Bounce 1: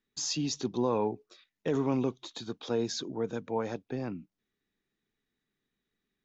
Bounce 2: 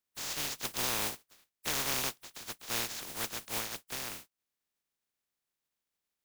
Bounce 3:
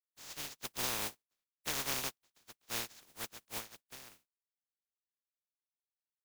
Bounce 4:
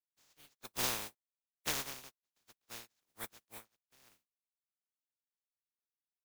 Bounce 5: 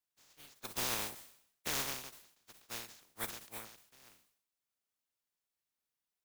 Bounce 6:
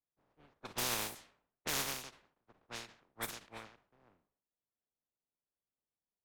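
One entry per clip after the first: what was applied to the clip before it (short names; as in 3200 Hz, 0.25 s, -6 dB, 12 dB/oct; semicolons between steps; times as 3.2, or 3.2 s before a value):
spectral contrast lowered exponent 0.12; gain -4 dB
upward expander 2.5:1, over -47 dBFS; gain -2 dB
spectral noise reduction 10 dB; dB-linear tremolo 1.2 Hz, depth 18 dB; gain +2 dB
limiter -29 dBFS, peak gain reduction 9.5 dB; sustainer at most 86 dB/s; gain +4.5 dB
low-pass opened by the level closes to 730 Hz, open at -37 dBFS; gain +1 dB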